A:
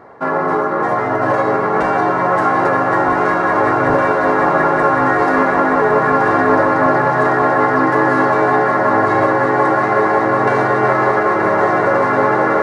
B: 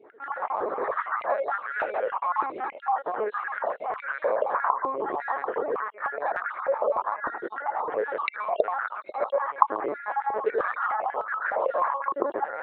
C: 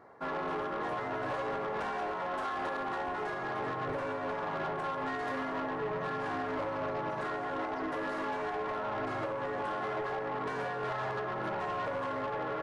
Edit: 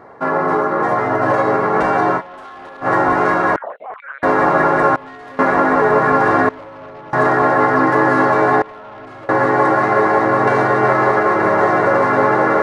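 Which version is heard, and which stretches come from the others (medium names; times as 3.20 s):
A
2.19–2.84 s: from C, crossfade 0.06 s
3.56–4.23 s: from B
4.96–5.39 s: from C
6.49–7.13 s: from C
8.62–9.29 s: from C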